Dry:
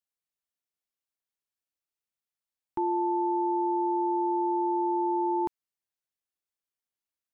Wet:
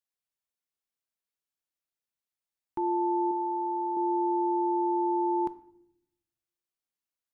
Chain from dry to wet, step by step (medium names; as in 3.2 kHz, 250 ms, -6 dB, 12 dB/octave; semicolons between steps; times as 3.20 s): 3.31–3.97 s: bass shelf 360 Hz -11.5 dB; reverberation RT60 0.80 s, pre-delay 6 ms, DRR 13 dB; trim -2 dB